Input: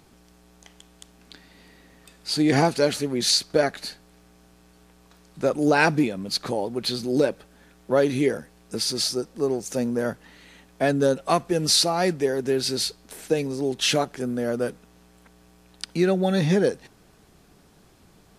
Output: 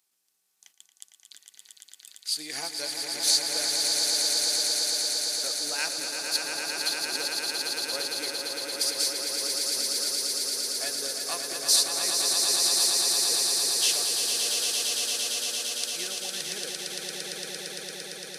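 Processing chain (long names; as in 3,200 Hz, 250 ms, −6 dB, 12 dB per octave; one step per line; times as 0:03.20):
noise gate −51 dBFS, range −10 dB
transient designer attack +3 dB, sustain −9 dB
first difference
on a send: echo that builds up and dies away 114 ms, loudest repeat 8, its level −5 dB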